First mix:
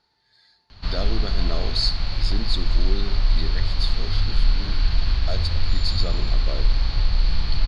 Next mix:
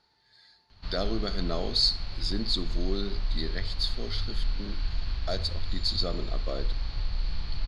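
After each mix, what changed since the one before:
background -10.5 dB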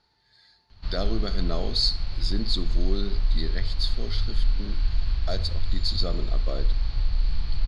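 master: add low shelf 120 Hz +7 dB

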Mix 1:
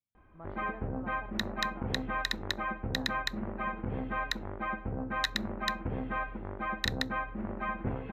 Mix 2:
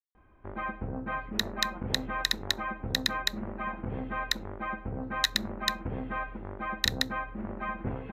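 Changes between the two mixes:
speech: entry +0.70 s; second sound: add high shelf 3700 Hz +11.5 dB

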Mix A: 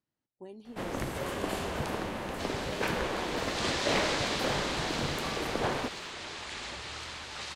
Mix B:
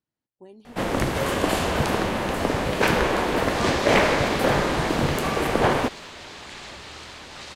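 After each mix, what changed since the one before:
first sound +11.0 dB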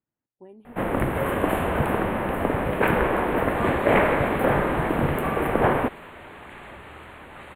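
master: add Butterworth band-stop 5400 Hz, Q 0.6

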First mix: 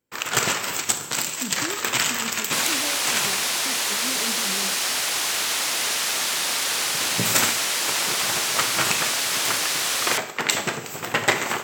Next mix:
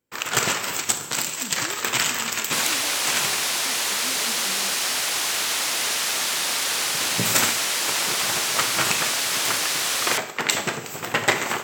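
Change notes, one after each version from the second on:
speech -6.0 dB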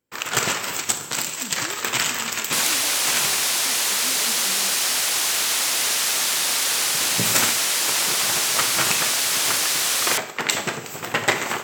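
second sound: add high shelf 5400 Hz +5.5 dB

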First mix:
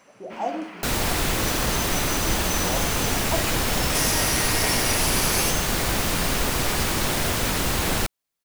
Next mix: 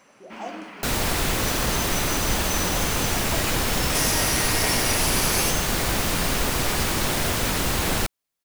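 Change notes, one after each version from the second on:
speech -8.0 dB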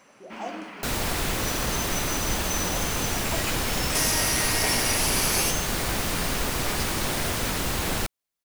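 second sound -3.5 dB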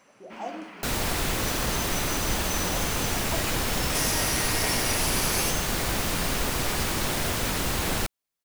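first sound -3.5 dB

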